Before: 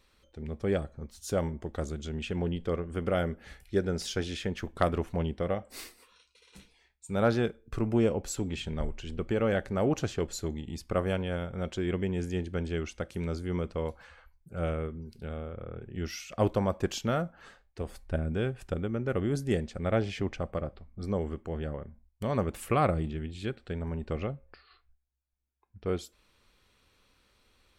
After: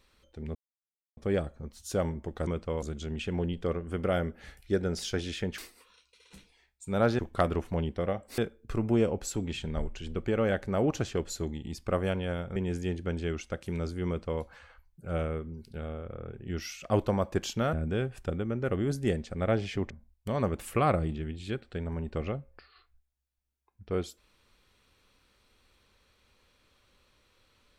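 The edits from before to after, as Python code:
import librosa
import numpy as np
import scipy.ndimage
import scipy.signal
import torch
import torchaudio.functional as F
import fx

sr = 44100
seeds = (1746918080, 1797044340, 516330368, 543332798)

y = fx.edit(x, sr, fx.insert_silence(at_s=0.55, length_s=0.62),
    fx.move(start_s=4.61, length_s=1.19, to_s=7.41),
    fx.cut(start_s=11.59, length_s=0.45),
    fx.duplicate(start_s=13.55, length_s=0.35, to_s=1.85),
    fx.cut(start_s=17.21, length_s=0.96),
    fx.cut(start_s=20.34, length_s=1.51), tone=tone)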